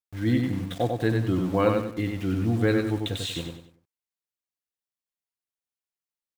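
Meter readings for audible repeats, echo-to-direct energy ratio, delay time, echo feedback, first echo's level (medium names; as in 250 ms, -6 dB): 4, -3.5 dB, 95 ms, 34%, -4.0 dB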